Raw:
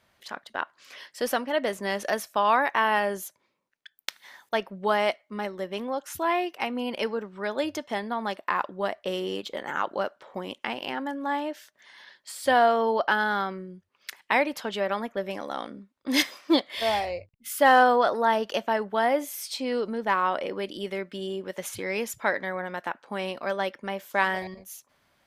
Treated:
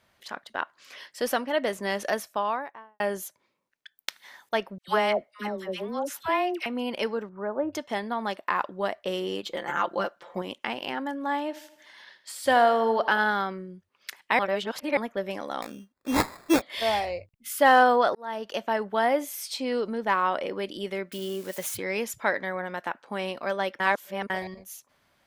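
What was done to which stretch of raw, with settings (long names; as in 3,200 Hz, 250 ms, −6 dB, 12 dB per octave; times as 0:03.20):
0:02.05–0:03.00: fade out and dull
0:04.78–0:06.66: all-pass dispersion lows, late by 103 ms, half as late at 960 Hz
0:07.29–0:07.73: low-pass filter 1,300 Hz 24 dB per octave
0:09.44–0:10.42: comb filter 5.8 ms
0:11.40–0:13.31: feedback echo with a high-pass in the loop 80 ms, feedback 57%, high-pass 200 Hz, level −14.5 dB
0:14.39–0:14.97: reverse
0:15.62–0:16.62: sample-rate reduction 3,000 Hz
0:18.15–0:18.99: fade in equal-power
0:21.12–0:21.77: spike at every zero crossing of −33 dBFS
0:23.80–0:24.30: reverse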